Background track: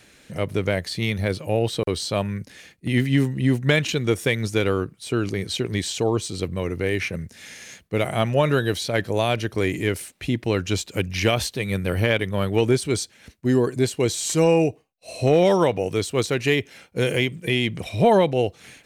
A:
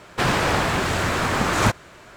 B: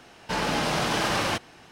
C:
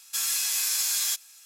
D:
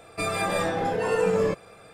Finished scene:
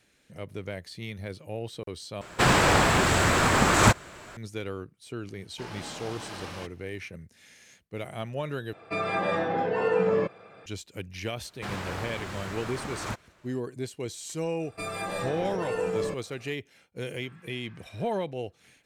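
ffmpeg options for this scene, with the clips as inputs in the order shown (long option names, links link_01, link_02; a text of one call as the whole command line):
ffmpeg -i bed.wav -i cue0.wav -i cue1.wav -i cue2.wav -i cue3.wav -filter_complex "[1:a]asplit=2[link_01][link_02];[4:a]asplit=2[link_03][link_04];[0:a]volume=-13.5dB[link_05];[link_01]equalizer=frequency=7700:width_type=o:width=0.23:gain=6.5[link_06];[link_03]highpass=120,lowpass=3100[link_07];[3:a]lowpass=frequency=1800:width=0.5412,lowpass=frequency=1800:width=1.3066[link_08];[link_05]asplit=3[link_09][link_10][link_11];[link_09]atrim=end=2.214[link_12];[link_06]atrim=end=2.16[link_13];[link_10]atrim=start=4.366:end=8.734[link_14];[link_07]atrim=end=1.93,asetpts=PTS-STARTPTS,volume=-1dB[link_15];[link_11]atrim=start=10.656[link_16];[2:a]atrim=end=1.71,asetpts=PTS-STARTPTS,volume=-15dB,afade=type=in:duration=0.004:curve=hsin,afade=type=out:start_time=1.706:duration=0.004:curve=hsin,adelay=233289S[link_17];[link_02]atrim=end=2.16,asetpts=PTS-STARTPTS,volume=-15.5dB,afade=type=in:duration=0.004:curve=hsin,afade=type=out:start_time=2.156:duration=0.004:curve=hsin,adelay=11440[link_18];[link_04]atrim=end=1.93,asetpts=PTS-STARTPTS,volume=-7dB,afade=type=in:duration=0.004:curve=hsin,afade=type=out:start_time=1.926:duration=0.004:curve=hsin,adelay=643860S[link_19];[link_08]atrim=end=1.45,asetpts=PTS-STARTPTS,volume=-13.5dB,afade=type=in:duration=0.004:curve=hsin,afade=type=out:start_time=1.446:duration=0.004:curve=hsin,adelay=17080[link_20];[link_12][link_13]acrossfade=duration=0.004:curve1=hsin:curve2=hsin[link_21];[link_21][link_14]acrossfade=duration=0.004:curve1=hsin:curve2=hsin[link_22];[link_22][link_15]acrossfade=duration=0.004:curve1=hsin:curve2=hsin[link_23];[link_23][link_16]acrossfade=duration=0.004:curve1=hsin:curve2=hsin[link_24];[link_24][link_17][link_18][link_19][link_20]amix=inputs=5:normalize=0" out.wav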